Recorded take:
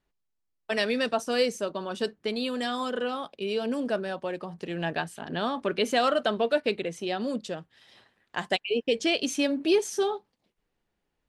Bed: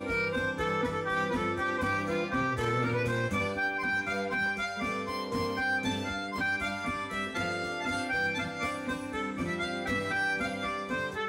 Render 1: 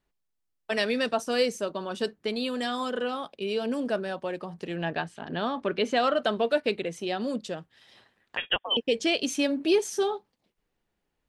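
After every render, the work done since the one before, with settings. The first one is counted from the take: 4.76–6.23 s: distance through air 82 m; 8.37–8.77 s: frequency inversion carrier 3.5 kHz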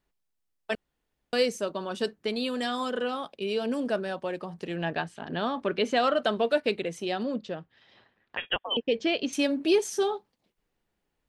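0.75–1.33 s: room tone; 7.23–9.33 s: distance through air 180 m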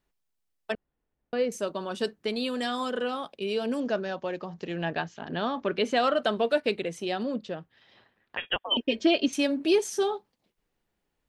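0.72–1.52 s: tape spacing loss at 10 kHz 35 dB; 3.80–5.77 s: careless resampling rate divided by 3×, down none, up filtered; 8.71–9.28 s: comb 3.2 ms, depth 98%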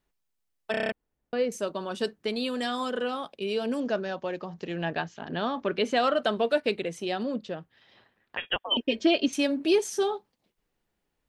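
0.71 s: stutter in place 0.03 s, 7 plays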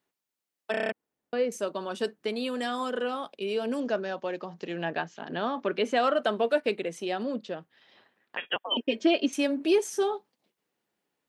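high-pass 200 Hz 12 dB/octave; dynamic bell 4.2 kHz, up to -5 dB, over -45 dBFS, Q 1.4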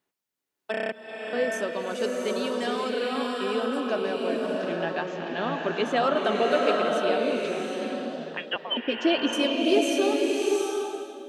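repeats whose band climbs or falls 390 ms, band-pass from 3.1 kHz, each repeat -1.4 oct, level -11 dB; swelling reverb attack 750 ms, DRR -1 dB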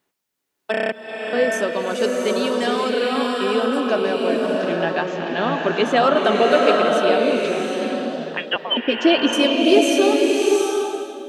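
trim +7.5 dB

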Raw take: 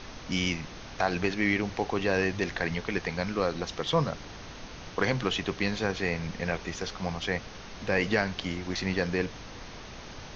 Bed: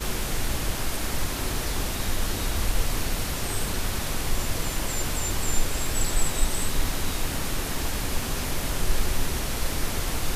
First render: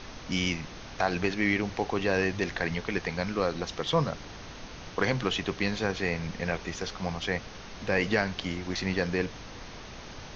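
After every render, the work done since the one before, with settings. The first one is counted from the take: no audible change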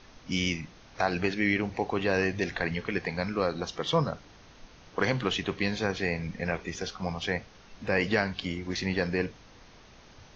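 noise print and reduce 10 dB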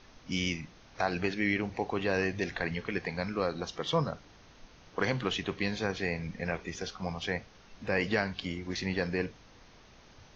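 trim -3 dB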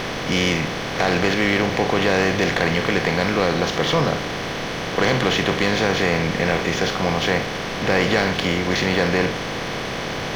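spectral levelling over time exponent 0.4; waveshaping leveller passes 2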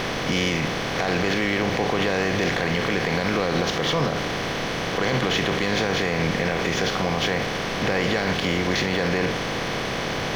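peak limiter -13.5 dBFS, peak gain reduction 6.5 dB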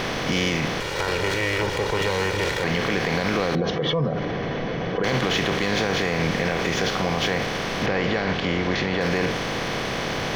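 0.80–2.64 s: comb filter that takes the minimum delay 2.1 ms; 3.55–5.04 s: spectral contrast enhancement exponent 1.9; 7.86–9.01 s: distance through air 120 m

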